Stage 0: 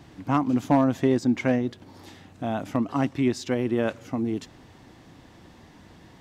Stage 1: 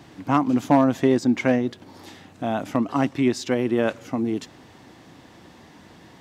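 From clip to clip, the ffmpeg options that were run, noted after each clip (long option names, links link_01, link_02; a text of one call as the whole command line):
ffmpeg -i in.wav -af "highpass=frequency=160:poles=1,volume=4dB" out.wav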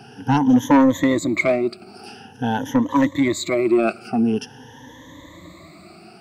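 ffmpeg -i in.wav -af "afftfilt=real='re*pow(10,23/40*sin(2*PI*(1.1*log(max(b,1)*sr/1024/100)/log(2)-(0.47)*(pts-256)/sr)))':imag='im*pow(10,23/40*sin(2*PI*(1.1*log(max(b,1)*sr/1024/100)/log(2)-(0.47)*(pts-256)/sr)))':win_size=1024:overlap=0.75,asoftclip=type=tanh:threshold=-7.5dB" out.wav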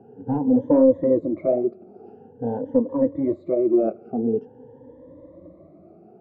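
ffmpeg -i in.wav -af "lowpass=frequency=510:width_type=q:width=4.6,flanger=delay=3.4:depth=9.2:regen=-55:speed=1.1:shape=sinusoidal,volume=-3dB" out.wav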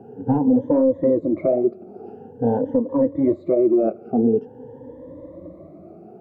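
ffmpeg -i in.wav -af "alimiter=limit=-16dB:level=0:latency=1:release=323,volume=6.5dB" out.wav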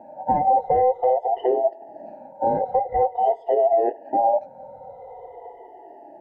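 ffmpeg -i in.wav -af "afftfilt=real='real(if(between(b,1,1008),(2*floor((b-1)/48)+1)*48-b,b),0)':imag='imag(if(between(b,1,1008),(2*floor((b-1)/48)+1)*48-b,b),0)*if(between(b,1,1008),-1,1)':win_size=2048:overlap=0.75,volume=-1.5dB" out.wav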